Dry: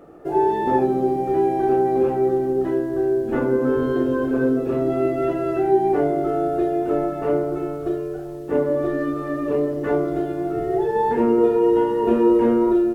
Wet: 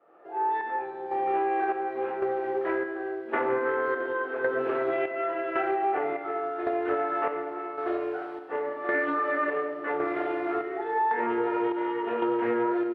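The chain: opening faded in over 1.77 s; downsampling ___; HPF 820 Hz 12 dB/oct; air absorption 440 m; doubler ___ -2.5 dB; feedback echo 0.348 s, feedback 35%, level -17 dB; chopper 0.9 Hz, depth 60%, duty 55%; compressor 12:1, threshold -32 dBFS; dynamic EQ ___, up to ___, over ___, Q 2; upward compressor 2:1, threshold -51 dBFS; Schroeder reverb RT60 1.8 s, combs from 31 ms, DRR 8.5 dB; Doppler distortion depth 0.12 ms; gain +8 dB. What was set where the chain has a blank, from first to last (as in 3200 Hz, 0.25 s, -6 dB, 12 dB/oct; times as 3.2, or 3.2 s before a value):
32000 Hz, 25 ms, 1900 Hz, +6 dB, -57 dBFS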